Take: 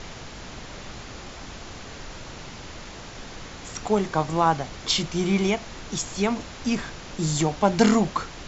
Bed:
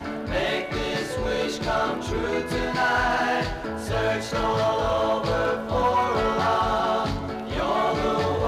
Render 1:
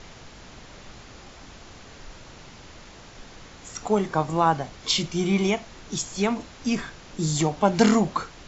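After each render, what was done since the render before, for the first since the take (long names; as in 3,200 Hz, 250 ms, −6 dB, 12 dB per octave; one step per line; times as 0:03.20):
noise reduction from a noise print 6 dB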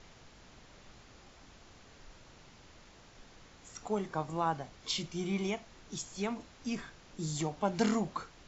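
level −11.5 dB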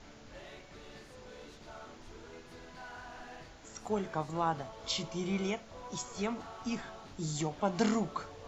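mix in bed −26 dB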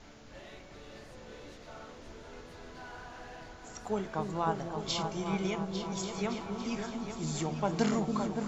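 echo whose low-pass opens from repeat to repeat 283 ms, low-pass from 400 Hz, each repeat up 2 octaves, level −3 dB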